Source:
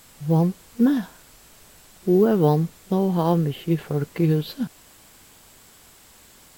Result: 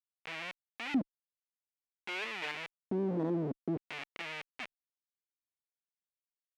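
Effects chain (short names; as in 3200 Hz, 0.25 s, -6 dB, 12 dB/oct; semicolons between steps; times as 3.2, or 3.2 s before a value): treble ducked by the level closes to 1400 Hz, closed at -16.5 dBFS; Schmitt trigger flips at -27 dBFS; overdrive pedal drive 24 dB, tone 6300 Hz, clips at -17.5 dBFS; LFO band-pass square 0.53 Hz 290–2400 Hz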